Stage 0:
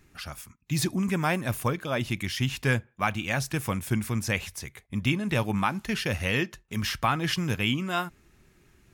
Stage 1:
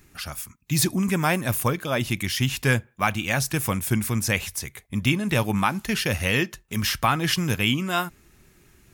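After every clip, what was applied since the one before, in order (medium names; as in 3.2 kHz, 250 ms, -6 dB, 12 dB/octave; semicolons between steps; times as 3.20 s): treble shelf 7.4 kHz +9 dB; trim +3.5 dB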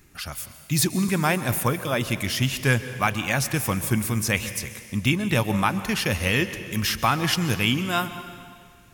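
plate-style reverb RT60 2 s, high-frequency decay 0.95×, pre-delay 115 ms, DRR 11.5 dB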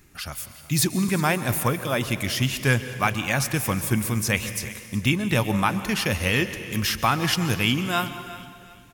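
feedback delay 367 ms, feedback 35%, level -18 dB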